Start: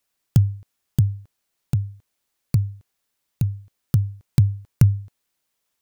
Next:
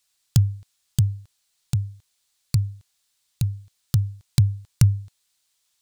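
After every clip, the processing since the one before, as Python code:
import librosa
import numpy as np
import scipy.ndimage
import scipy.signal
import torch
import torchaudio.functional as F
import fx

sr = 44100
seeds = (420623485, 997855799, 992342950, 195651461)

y = fx.graphic_eq(x, sr, hz=(250, 500, 4000, 8000), db=(-8, -5, 8, 8))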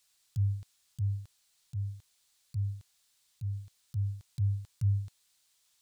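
y = fx.auto_swell(x, sr, attack_ms=164.0)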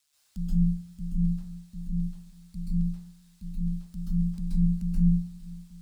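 y = x * np.sin(2.0 * np.pi * 73.0 * np.arange(len(x)) / sr)
y = fx.echo_feedback(y, sr, ms=886, feedback_pct=36, wet_db=-18.0)
y = fx.rev_plate(y, sr, seeds[0], rt60_s=0.58, hf_ratio=0.45, predelay_ms=120, drr_db=-9.0)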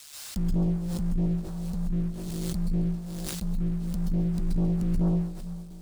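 y = fx.leveller(x, sr, passes=3)
y = y + 10.0 ** (-11.0 / 20.0) * np.pad(y, (int(140 * sr / 1000.0), 0))[:len(y)]
y = fx.pre_swell(y, sr, db_per_s=20.0)
y = y * librosa.db_to_amplitude(-8.0)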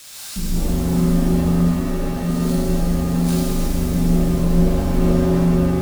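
y = x + 0.5 * 10.0 ** (-41.5 / 20.0) * np.sign(x)
y = fx.quant_companded(y, sr, bits=6)
y = fx.rev_shimmer(y, sr, seeds[1], rt60_s=3.3, semitones=7, shimmer_db=-2, drr_db=-6.0)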